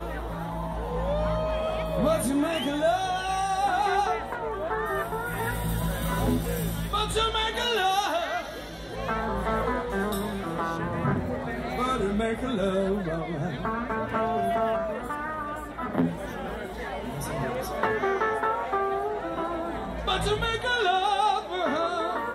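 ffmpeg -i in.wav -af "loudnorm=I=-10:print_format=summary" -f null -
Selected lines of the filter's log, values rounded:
Input Integrated:    -27.7 LUFS
Input True Peak:     -10.7 dBTP
Input LRA:             3.3 LU
Input Threshold:     -37.7 LUFS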